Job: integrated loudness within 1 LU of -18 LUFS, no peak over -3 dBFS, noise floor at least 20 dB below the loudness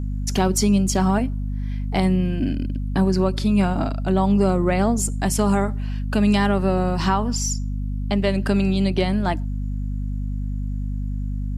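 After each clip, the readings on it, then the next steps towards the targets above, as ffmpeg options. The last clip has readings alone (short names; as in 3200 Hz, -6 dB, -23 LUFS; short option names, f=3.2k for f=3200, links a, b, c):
hum 50 Hz; harmonics up to 250 Hz; hum level -23 dBFS; loudness -22.0 LUFS; peak -7.5 dBFS; loudness target -18.0 LUFS
-> -af "bandreject=f=50:t=h:w=4,bandreject=f=100:t=h:w=4,bandreject=f=150:t=h:w=4,bandreject=f=200:t=h:w=4,bandreject=f=250:t=h:w=4"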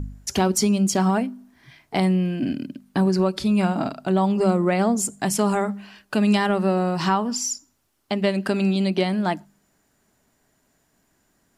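hum none; loudness -22.5 LUFS; peak -9.0 dBFS; loudness target -18.0 LUFS
-> -af "volume=4.5dB"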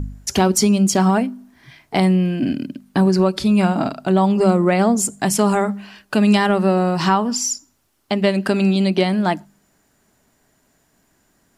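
loudness -18.0 LUFS; peak -4.5 dBFS; noise floor -63 dBFS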